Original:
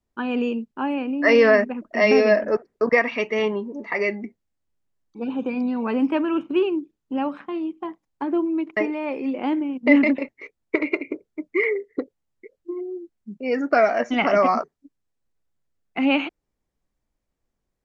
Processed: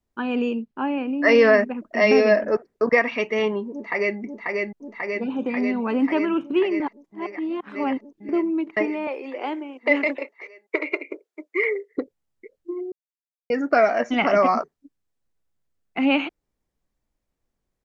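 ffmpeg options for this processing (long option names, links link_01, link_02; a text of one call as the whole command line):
ffmpeg -i in.wav -filter_complex "[0:a]asettb=1/sr,asplit=3[link_01][link_02][link_03];[link_01]atrim=end=0.604[link_04];[link_02]atrim=start=0.6:end=1.07,asetpts=PTS-STARTPTS,afade=type=in:duration=0.004:curve=qsin,afade=type=out:start_time=0.466:duration=0.004:curve=qsin,lowpass=4200[link_05];[link_03]atrim=start=1.066[link_06];[link_04][link_05]acrossfade=duration=0.004:curve1=hsin:curve2=qsin[link_07];[link_07][link_06]acrossfade=duration=0.004:curve1=qsin:curve2=hsin,asplit=2[link_08][link_09];[link_09]afade=type=in:start_time=3.72:duration=0.01,afade=type=out:start_time=4.18:duration=0.01,aecho=0:1:540|1080|1620|2160|2700|3240|3780|4320|4860|5400|5940|6480:0.749894|0.599915|0.479932|0.383946|0.307157|0.245725|0.19658|0.157264|0.125811|0.100649|0.0805193|0.0644154[link_10];[link_08][link_10]amix=inputs=2:normalize=0,asettb=1/sr,asplit=3[link_11][link_12][link_13];[link_11]atrim=end=9.074[link_14];[link_12]atrim=start=9.07:end=11.95,asetpts=PTS-STARTPTS,afade=type=in:duration=0.004:curve=qsin,afade=type=out:start_time=2.876:duration=0.004:curve=qsin,highpass=frequency=380:width=0.5412,highpass=frequency=380:width=1.3066[link_15];[link_13]atrim=start=11.946[link_16];[link_14][link_15]acrossfade=duration=0.004:curve1=hsin:curve2=qsin[link_17];[link_17][link_16]acrossfade=duration=0.004:curve1=qsin:curve2=hsin,asplit=5[link_18][link_19][link_20][link_21][link_22];[link_18]atrim=end=6.802[link_23];[link_19]atrim=start=6.798:end=8.292,asetpts=PTS-STARTPTS,areverse[link_24];[link_20]atrim=start=8.288:end=12.92,asetpts=PTS-STARTPTS,afade=type=out:start_time=4.628:duration=0.004:curve=hsin[link_25];[link_21]atrim=start=12.92:end=13.5,asetpts=PTS-STARTPTS,volume=0[link_26];[link_22]atrim=start=13.5,asetpts=PTS-STARTPTS,afade=type=in:duration=0.004:curve=hsin[link_27];[link_23][link_24]acrossfade=duration=0.004:curve1=hsin:curve2=hsin[link_28];[link_25][link_26][link_27]concat=n=3:v=0:a=1[link_29];[link_28][link_29]acrossfade=duration=0.004:curve1=hsin:curve2=hsin" out.wav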